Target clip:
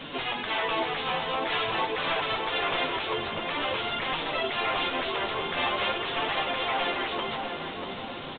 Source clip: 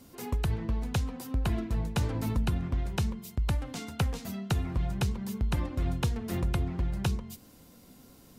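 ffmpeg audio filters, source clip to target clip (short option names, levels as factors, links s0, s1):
-filter_complex "[0:a]aexciter=amount=1.8:drive=9.6:freq=2700,afftfilt=real='re*lt(hypot(re,im),0.0355)':imag='im*lt(hypot(re,im),0.0355)':win_size=1024:overlap=0.75,asplit=2[s0][s1];[s1]highpass=f=720:p=1,volume=25.1,asoftclip=type=tanh:threshold=0.0891[s2];[s0][s2]amix=inputs=2:normalize=0,lowpass=f=2400:p=1,volume=0.501,bandreject=f=60:t=h:w=6,bandreject=f=120:t=h:w=6,bandreject=f=180:t=h:w=6,bandreject=f=240:t=h:w=6,bandreject=f=300:t=h:w=6,bandreject=f=360:t=h:w=6,bandreject=f=420:t=h:w=6,flanger=delay=5.9:depth=8.1:regen=26:speed=0.47:shape=triangular,asplit=2[s3][s4];[s4]adelay=641,lowpass=f=1500:p=1,volume=0.596,asplit=2[s5][s6];[s6]adelay=641,lowpass=f=1500:p=1,volume=0.55,asplit=2[s7][s8];[s8]adelay=641,lowpass=f=1500:p=1,volume=0.55,asplit=2[s9][s10];[s10]adelay=641,lowpass=f=1500:p=1,volume=0.55,asplit=2[s11][s12];[s12]adelay=641,lowpass=f=1500:p=1,volume=0.55,asplit=2[s13][s14];[s14]adelay=641,lowpass=f=1500:p=1,volume=0.55,asplit=2[s15][s16];[s16]adelay=641,lowpass=f=1500:p=1,volume=0.55[s17];[s5][s7][s9][s11][s13][s15][s17]amix=inputs=7:normalize=0[s18];[s3][s18]amix=inputs=2:normalize=0,aresample=8000,aresample=44100,volume=2.82"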